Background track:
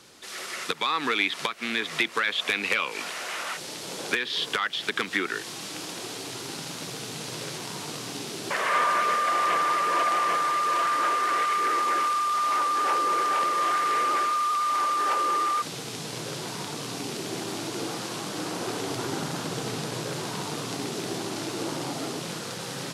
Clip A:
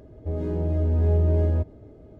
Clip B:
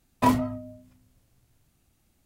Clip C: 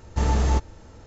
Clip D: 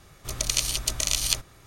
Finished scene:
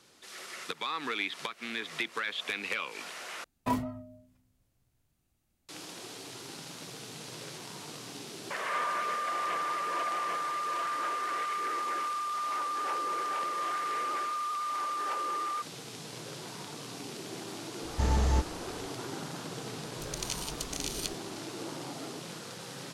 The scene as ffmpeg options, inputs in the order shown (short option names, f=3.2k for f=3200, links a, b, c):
-filter_complex "[0:a]volume=-8.5dB,asplit=2[a][b];[a]atrim=end=3.444[c];[2:a]atrim=end=2.25,asetpts=PTS-STARTPTS,volume=-9dB[d];[b]atrim=start=5.686[e];[3:a]atrim=end=1.06,asetpts=PTS-STARTPTS,volume=-5.5dB,afade=t=in:d=0.004:c=hsin,afade=t=out:st=1.056:d=0.004:c=hsin,adelay=17820[f];[4:a]atrim=end=1.66,asetpts=PTS-STARTPTS,volume=-12dB,afade=t=in:d=0.004:c=hsin,afade=t=out:st=1.656:d=0.004:c=hsin,adelay=19730[g];[c][d]acrossfade=d=0.004:c1=hsin:c2=hsin[h];[h][e]acrossfade=d=0.004:c1=hsin:c2=hsin[i];[i][f][g]amix=inputs=3:normalize=0"